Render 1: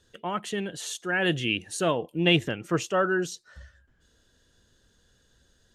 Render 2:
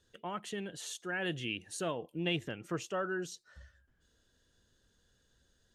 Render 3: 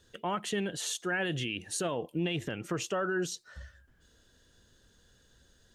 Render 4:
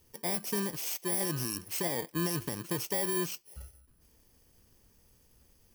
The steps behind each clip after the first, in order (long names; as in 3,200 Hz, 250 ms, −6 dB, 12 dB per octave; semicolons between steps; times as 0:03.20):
downward compressor 1.5 to 1, threshold −30 dBFS, peak gain reduction 5.5 dB; level −7.5 dB
brickwall limiter −31 dBFS, peak gain reduction 10 dB; level +8 dB
samples in bit-reversed order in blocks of 32 samples